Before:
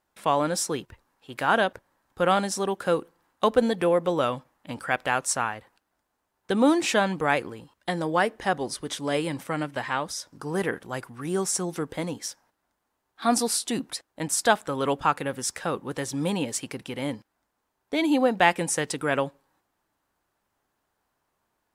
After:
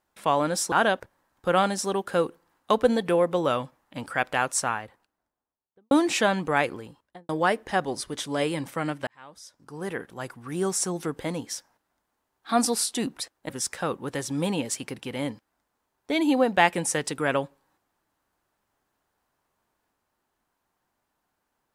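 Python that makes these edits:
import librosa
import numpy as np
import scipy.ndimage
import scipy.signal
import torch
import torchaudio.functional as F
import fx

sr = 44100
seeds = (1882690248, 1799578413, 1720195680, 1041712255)

y = fx.studio_fade_out(x, sr, start_s=5.35, length_s=1.29)
y = fx.studio_fade_out(y, sr, start_s=7.57, length_s=0.45)
y = fx.edit(y, sr, fx.cut(start_s=0.72, length_s=0.73),
    fx.fade_in_span(start_s=9.8, length_s=1.55),
    fx.cut(start_s=14.22, length_s=1.1), tone=tone)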